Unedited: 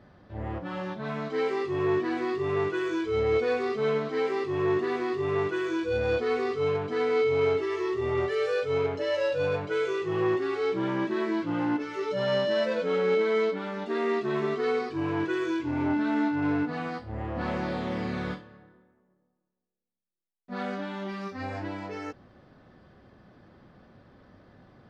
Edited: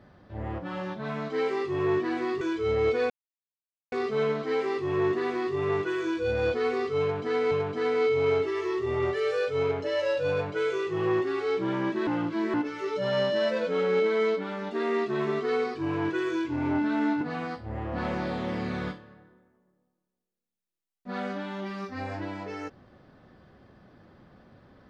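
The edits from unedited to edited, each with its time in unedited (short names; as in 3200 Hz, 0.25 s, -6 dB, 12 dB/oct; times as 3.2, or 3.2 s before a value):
2.41–2.89 cut
3.58 insert silence 0.82 s
6.66–7.17 loop, 2 plays
11.22–11.69 reverse
16.36–16.64 cut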